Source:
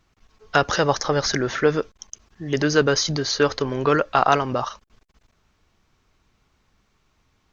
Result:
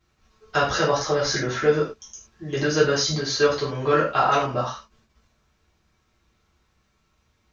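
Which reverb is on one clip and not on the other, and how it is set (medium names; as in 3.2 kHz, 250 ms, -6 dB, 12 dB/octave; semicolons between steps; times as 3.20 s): gated-style reverb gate 140 ms falling, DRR -7.5 dB; trim -9.5 dB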